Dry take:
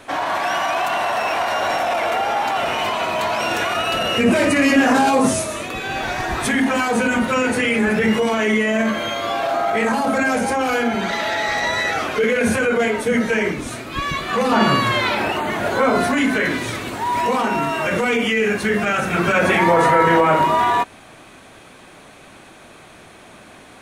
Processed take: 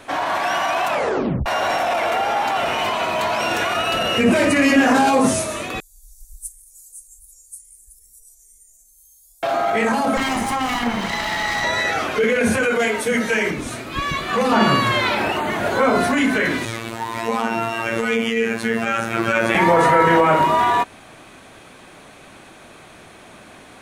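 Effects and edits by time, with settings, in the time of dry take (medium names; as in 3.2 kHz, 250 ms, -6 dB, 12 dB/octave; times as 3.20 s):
0.87 s: tape stop 0.59 s
5.80–9.43 s: inverse Chebyshev band-stop 120–3000 Hz, stop band 60 dB
10.17–11.64 s: comb filter that takes the minimum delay 1 ms
12.63–13.51 s: tilt EQ +1.5 dB/octave
16.65–19.55 s: robot voice 114 Hz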